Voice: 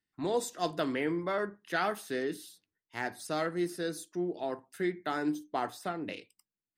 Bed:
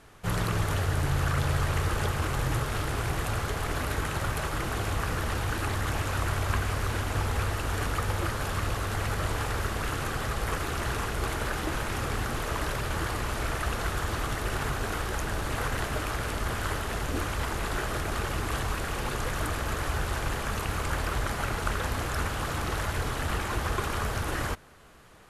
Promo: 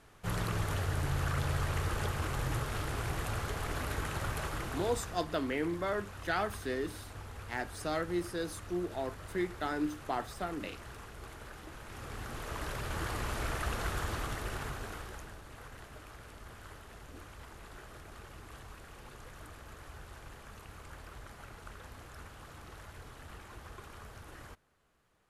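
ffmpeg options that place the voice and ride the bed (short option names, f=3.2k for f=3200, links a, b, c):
-filter_complex "[0:a]adelay=4550,volume=-2dB[a];[1:a]volume=6.5dB,afade=t=out:st=4.46:d=0.81:silence=0.266073,afade=t=in:st=11.8:d=1.44:silence=0.237137,afade=t=out:st=14:d=1.41:silence=0.188365[b];[a][b]amix=inputs=2:normalize=0"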